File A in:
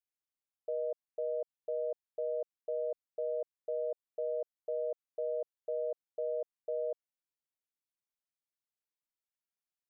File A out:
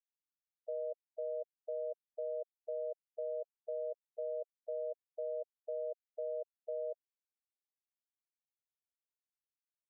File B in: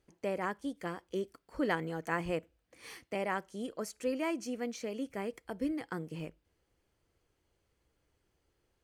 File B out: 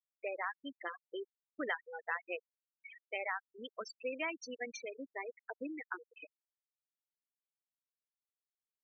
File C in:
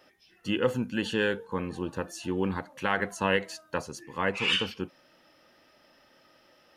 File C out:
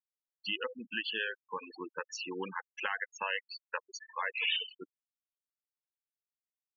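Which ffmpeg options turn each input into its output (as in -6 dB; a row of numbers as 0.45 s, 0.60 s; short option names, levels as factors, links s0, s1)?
-af "bandpass=f=3200:t=q:w=0.65:csg=0,acompressor=threshold=0.00794:ratio=3,afftfilt=real='re*gte(hypot(re,im),0.0126)':imag='im*gte(hypot(re,im),0.0126)':win_size=1024:overlap=0.75,volume=2.66"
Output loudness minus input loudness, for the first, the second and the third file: -4.0 LU, -5.0 LU, -6.5 LU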